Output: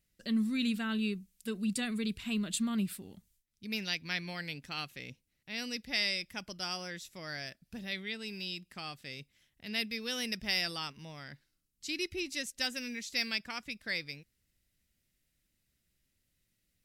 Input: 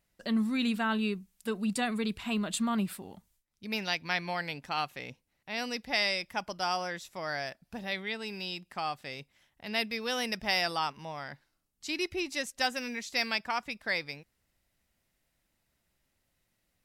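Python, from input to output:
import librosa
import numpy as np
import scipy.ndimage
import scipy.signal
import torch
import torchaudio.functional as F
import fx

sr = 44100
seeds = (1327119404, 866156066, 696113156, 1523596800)

y = fx.peak_eq(x, sr, hz=850.0, db=-15.0, octaves=1.5)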